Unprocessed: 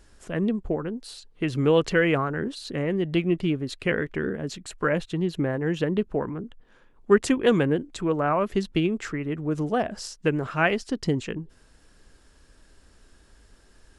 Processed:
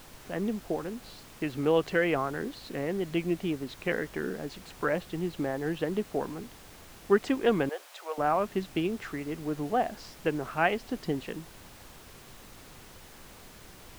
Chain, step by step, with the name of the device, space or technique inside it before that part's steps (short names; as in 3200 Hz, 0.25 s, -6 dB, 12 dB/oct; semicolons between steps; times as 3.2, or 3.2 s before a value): horn gramophone (BPF 180–3900 Hz; bell 760 Hz +6.5 dB 0.37 oct; wow and flutter; pink noise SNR 18 dB); 7.69–8.18 steep high-pass 520 Hz 36 dB/oct; gain -5 dB